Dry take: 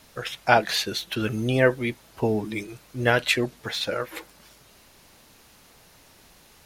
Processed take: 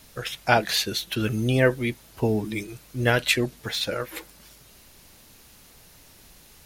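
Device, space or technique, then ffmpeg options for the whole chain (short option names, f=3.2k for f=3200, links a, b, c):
smiley-face EQ: -af "lowshelf=f=85:g=6,equalizer=f=910:t=o:w=2.1:g=-3.5,highshelf=f=9.3k:g=6,volume=1dB"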